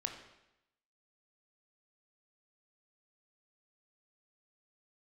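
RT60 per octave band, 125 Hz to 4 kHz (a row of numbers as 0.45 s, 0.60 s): 0.85 s, 0.85 s, 0.85 s, 0.90 s, 0.90 s, 0.80 s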